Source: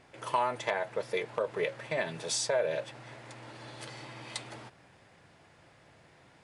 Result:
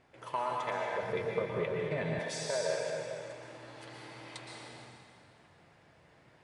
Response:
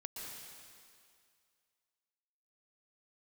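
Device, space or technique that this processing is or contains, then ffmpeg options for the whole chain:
swimming-pool hall: -filter_complex "[1:a]atrim=start_sample=2205[a];[0:a][a]afir=irnorm=-1:irlink=0,highshelf=f=4.2k:g=-6.5,asettb=1/sr,asplit=3[b][c][d];[b]atrim=end=1.024[e];[c]atrim=start=1.02:end=2.19,asetpts=PTS-STARTPTS,afade=t=in:d=0.004:c=qsin,afade=t=out:st=1.166:d=0.004:c=qsin,bass=f=250:g=13,treble=f=4k:g=-3[f];[d]atrim=start=2.186[g];[e][f]acrossfade=d=0.004:c1=hsin:c2=qsin[h];[h][g]acrossfade=d=0.004:c1=qsin:c2=hsin"

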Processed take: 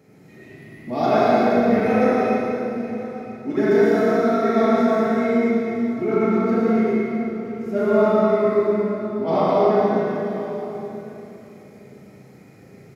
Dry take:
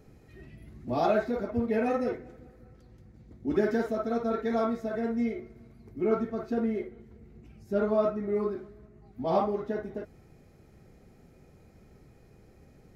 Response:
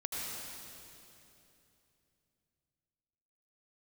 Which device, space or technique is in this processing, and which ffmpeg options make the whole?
PA in a hall: -filter_complex "[0:a]highpass=f=120:w=0.5412,highpass=f=120:w=1.3066,equalizer=f=2.1k:t=o:w=0.29:g=6.5,aecho=1:1:114:0.531[a];[1:a]atrim=start_sample=2205[b];[a][b]afir=irnorm=-1:irlink=0,asplit=2[c][d];[d]adelay=37,volume=-4dB[e];[c][e]amix=inputs=2:normalize=0,aecho=1:1:983:0.141,volume=5.5dB"

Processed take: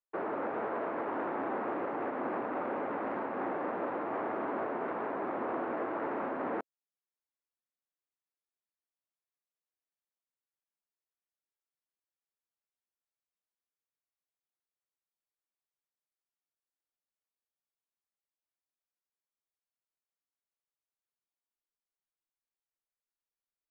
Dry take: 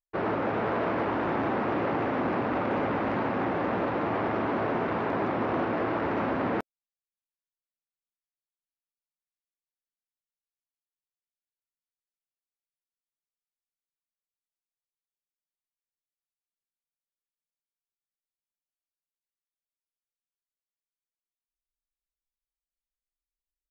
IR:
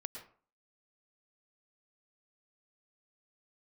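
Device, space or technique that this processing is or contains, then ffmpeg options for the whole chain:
DJ mixer with the lows and highs turned down: -filter_complex "[0:a]acrossover=split=240 2100:gain=0.112 1 0.158[a][b][c];[a][b][c]amix=inputs=3:normalize=0,alimiter=level_in=2dB:limit=-24dB:level=0:latency=1:release=498,volume=-2dB"

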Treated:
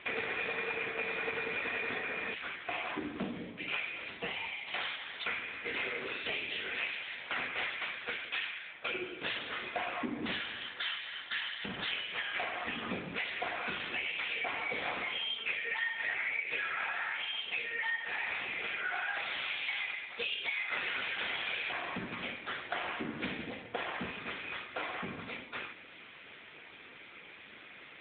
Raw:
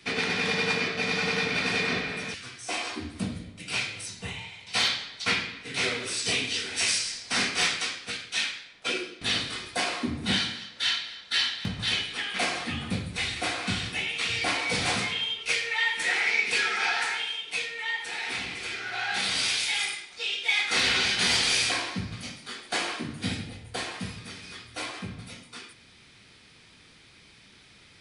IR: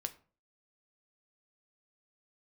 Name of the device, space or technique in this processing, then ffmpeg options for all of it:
voicemail: -af "highpass=350,lowpass=2.8k,acompressor=threshold=-41dB:ratio=6,volume=9dB" -ar 8000 -c:a libopencore_amrnb -b:a 7950

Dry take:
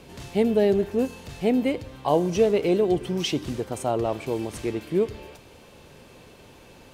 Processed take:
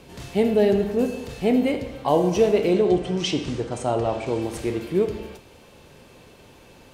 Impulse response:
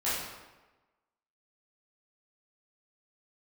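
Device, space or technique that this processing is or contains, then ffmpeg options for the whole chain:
keyed gated reverb: -filter_complex "[0:a]asettb=1/sr,asplit=3[a][b][c];[a]atrim=end=2.734[d];[b]atrim=start=2.73:end=4.42,asetpts=PTS-STARTPTS,afade=t=in:d=0.004:c=qsin,afade=t=out:st=1.686:d=0.004:c=qsin,lowpass=f=8.5k:w=0.5412,lowpass=f=8.5k:w=1.3066[e];[c]atrim=start=4.416[f];[d][e]acrossfade=d=0.004:c1=hsin:c2=qsin[g];[g][f]acrossfade=d=0.004:c1=qsin:c2=hsin,asplit=3[h][i][j];[1:a]atrim=start_sample=2205[k];[i][k]afir=irnorm=-1:irlink=0[l];[j]apad=whole_len=306005[m];[l][m]sidechaingate=range=-33dB:threshold=-44dB:ratio=16:detection=peak,volume=-13dB[n];[h][n]amix=inputs=2:normalize=0"

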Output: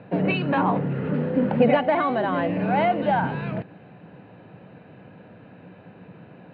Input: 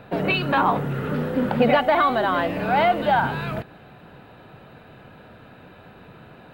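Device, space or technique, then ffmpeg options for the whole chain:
guitar cabinet: -af "highpass=100,equalizer=f=110:t=q:w=4:g=6,equalizer=f=180:t=q:w=4:g=9,equalizer=f=290:t=q:w=4:g=5,equalizer=f=510:t=q:w=4:g=4,equalizer=f=1.3k:t=q:w=4:g=-6,equalizer=f=3.5k:t=q:w=4:g=-7,lowpass=f=3.7k:w=0.5412,lowpass=f=3.7k:w=1.3066,volume=-3dB"

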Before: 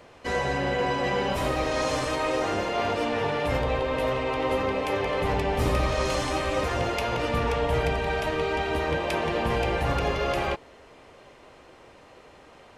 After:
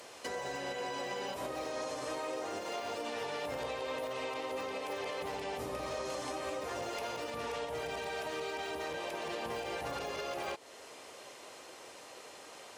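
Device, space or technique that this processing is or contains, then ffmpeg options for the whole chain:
podcast mastering chain: -af "highpass=93,bass=f=250:g=-11,treble=f=4k:g=14,deesser=0.9,acompressor=threshold=-33dB:ratio=2.5,alimiter=level_in=4.5dB:limit=-24dB:level=0:latency=1:release=317,volume=-4.5dB" -ar 44100 -c:a libmp3lame -b:a 96k

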